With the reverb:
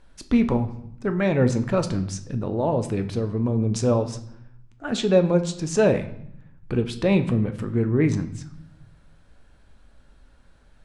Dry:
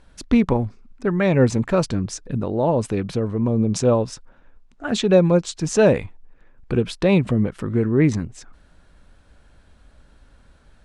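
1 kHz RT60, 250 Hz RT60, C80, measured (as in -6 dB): 0.70 s, 1.1 s, 16.0 dB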